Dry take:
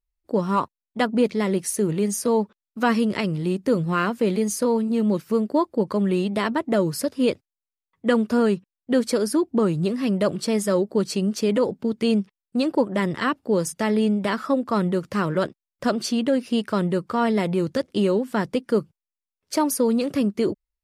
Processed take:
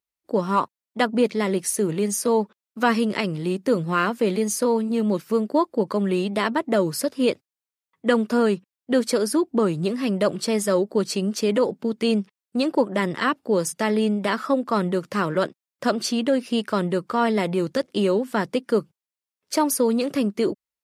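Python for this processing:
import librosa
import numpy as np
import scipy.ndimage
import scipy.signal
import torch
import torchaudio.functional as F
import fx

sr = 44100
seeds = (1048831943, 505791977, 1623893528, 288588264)

y = scipy.signal.sosfilt(scipy.signal.butter(2, 130.0, 'highpass', fs=sr, output='sos'), x)
y = fx.low_shelf(y, sr, hz=290.0, db=-4.5)
y = F.gain(torch.from_numpy(y), 2.0).numpy()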